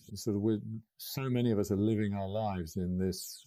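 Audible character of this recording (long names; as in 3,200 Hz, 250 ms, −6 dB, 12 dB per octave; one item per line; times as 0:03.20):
phaser sweep stages 8, 0.75 Hz, lowest notch 300–3,500 Hz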